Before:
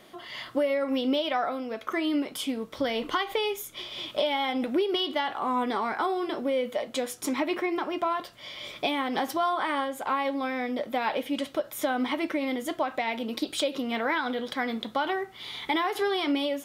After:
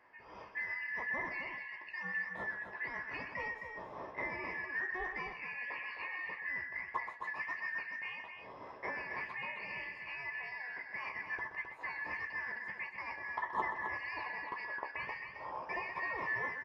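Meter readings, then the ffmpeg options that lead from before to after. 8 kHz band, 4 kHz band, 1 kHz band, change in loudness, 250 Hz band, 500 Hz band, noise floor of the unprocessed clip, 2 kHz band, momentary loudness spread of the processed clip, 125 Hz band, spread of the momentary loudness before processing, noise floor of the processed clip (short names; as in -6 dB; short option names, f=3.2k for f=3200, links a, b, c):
under -30 dB, -24.0 dB, -13.0 dB, -10.5 dB, -26.5 dB, -21.5 dB, -49 dBFS, -2.0 dB, 7 LU, -5.0 dB, 6 LU, -52 dBFS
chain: -filter_complex "[0:a]afftfilt=real='real(if(lt(b,272),68*(eq(floor(b/68),0)*2+eq(floor(b/68),1)*0+eq(floor(b/68),2)*3+eq(floor(b/68),3)*1)+mod(b,68),b),0)':imag='imag(if(lt(b,272),68*(eq(floor(b/68),0)*2+eq(floor(b/68),1)*0+eq(floor(b/68),2)*3+eq(floor(b/68),3)*1)+mod(b,68),b),0)':win_size=2048:overlap=0.75,bandpass=f=1k:t=q:w=5.5:csg=0,aemphasis=mode=reproduction:type=riaa,flanger=delay=7.4:depth=9.9:regen=-60:speed=1.7:shape=sinusoidal,asplit=2[a][b];[b]adelay=16,volume=-11dB[c];[a][c]amix=inputs=2:normalize=0,aecho=1:1:125.4|262.4:0.316|0.447,volume=10dB"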